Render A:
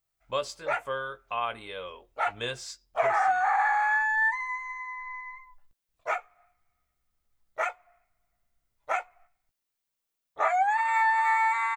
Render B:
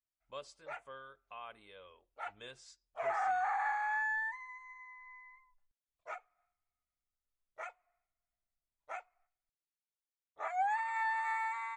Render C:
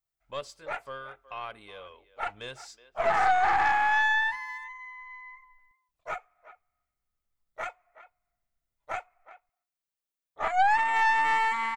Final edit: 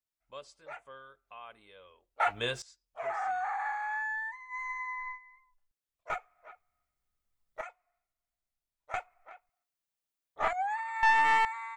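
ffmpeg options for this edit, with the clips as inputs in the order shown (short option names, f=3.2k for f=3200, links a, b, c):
-filter_complex "[0:a]asplit=2[a][b];[2:a]asplit=3[c][d][e];[1:a]asplit=6[f][g][h][i][j][k];[f]atrim=end=2.202[l];[a]atrim=start=2.198:end=2.622[m];[g]atrim=start=2.618:end=4.6[n];[b]atrim=start=4.5:end=5.19[o];[h]atrim=start=5.09:end=6.102[p];[c]atrim=start=6.098:end=7.612[q];[i]atrim=start=7.608:end=8.942[r];[d]atrim=start=8.938:end=10.532[s];[j]atrim=start=10.528:end=11.032[t];[e]atrim=start=11.028:end=11.452[u];[k]atrim=start=11.448[v];[l][m]acrossfade=d=0.004:c1=hsin:c2=hsin[w];[w][n]acrossfade=d=0.004:c1=hsin:c2=hsin[x];[x][o]acrossfade=d=0.1:c1=tri:c2=tri[y];[y][p]acrossfade=d=0.1:c1=tri:c2=tri[z];[z][q]acrossfade=d=0.004:c1=hsin:c2=hsin[aa];[aa][r]acrossfade=d=0.004:c1=hsin:c2=hsin[ab];[ab][s]acrossfade=d=0.004:c1=hsin:c2=hsin[ac];[ac][t]acrossfade=d=0.004:c1=hsin:c2=hsin[ad];[ad][u]acrossfade=d=0.004:c1=hsin:c2=hsin[ae];[ae][v]acrossfade=d=0.004:c1=hsin:c2=hsin"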